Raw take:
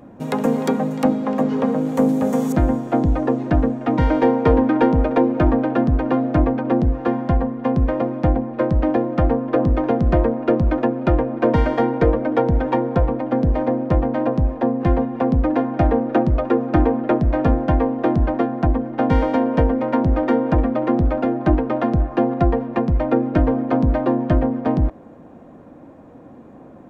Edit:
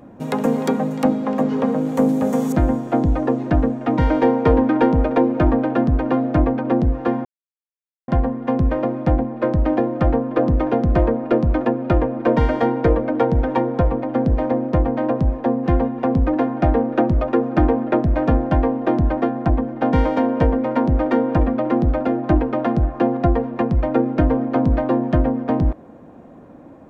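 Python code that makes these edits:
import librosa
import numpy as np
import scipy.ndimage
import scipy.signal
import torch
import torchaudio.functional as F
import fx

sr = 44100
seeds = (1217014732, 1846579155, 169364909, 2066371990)

y = fx.edit(x, sr, fx.insert_silence(at_s=7.25, length_s=0.83), tone=tone)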